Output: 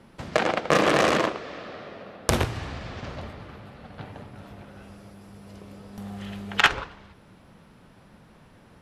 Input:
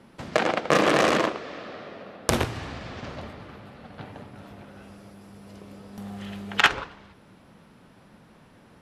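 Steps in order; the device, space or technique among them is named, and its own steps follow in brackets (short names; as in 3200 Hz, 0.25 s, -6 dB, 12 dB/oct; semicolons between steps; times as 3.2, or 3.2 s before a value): low shelf boost with a cut just above (low shelf 81 Hz +7.5 dB; bell 260 Hz -2 dB)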